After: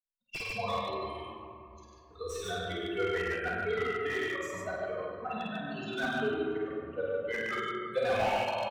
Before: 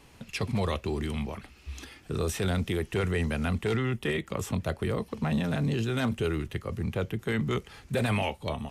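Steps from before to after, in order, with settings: expander on every frequency bin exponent 3; three-band isolator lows -20 dB, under 350 Hz, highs -18 dB, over 6 kHz; loudspeakers at several distances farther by 17 m -2 dB, 35 m -7 dB, 50 m -2 dB; reverberation RT60 2.7 s, pre-delay 4 ms, DRR -3 dB; slew-rate limiter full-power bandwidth 49 Hz

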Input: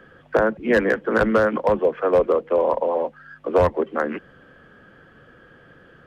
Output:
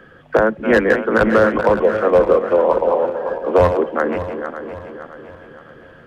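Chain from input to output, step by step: backward echo that repeats 282 ms, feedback 64%, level -8.5 dB; trim +4 dB

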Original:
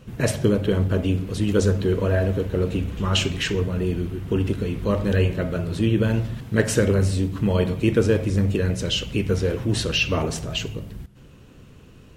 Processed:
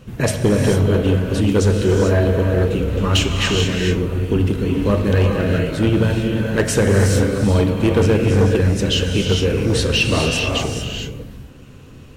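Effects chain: gated-style reverb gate 470 ms rising, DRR 1.5 dB; overload inside the chain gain 13 dB; trim +4 dB

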